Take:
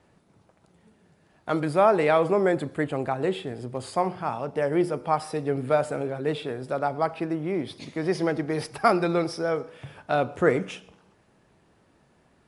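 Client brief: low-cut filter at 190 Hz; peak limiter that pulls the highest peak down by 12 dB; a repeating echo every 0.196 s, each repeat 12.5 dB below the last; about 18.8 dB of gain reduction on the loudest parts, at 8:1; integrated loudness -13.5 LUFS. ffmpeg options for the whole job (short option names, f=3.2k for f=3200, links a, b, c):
-af "highpass=190,acompressor=threshold=-35dB:ratio=8,alimiter=level_in=7.5dB:limit=-24dB:level=0:latency=1,volume=-7.5dB,aecho=1:1:196|392|588:0.237|0.0569|0.0137,volume=28.5dB"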